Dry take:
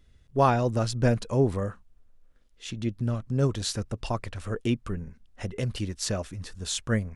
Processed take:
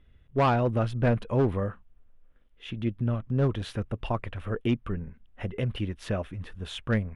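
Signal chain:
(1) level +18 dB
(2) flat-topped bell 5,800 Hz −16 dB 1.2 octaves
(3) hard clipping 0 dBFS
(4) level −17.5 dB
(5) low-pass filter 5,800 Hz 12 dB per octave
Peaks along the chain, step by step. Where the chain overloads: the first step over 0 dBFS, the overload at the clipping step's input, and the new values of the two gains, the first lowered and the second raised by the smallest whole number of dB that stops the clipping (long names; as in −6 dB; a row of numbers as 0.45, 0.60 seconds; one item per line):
+9.0, +9.0, 0.0, −17.5, −17.0 dBFS
step 1, 9.0 dB
step 1 +9 dB, step 4 −8.5 dB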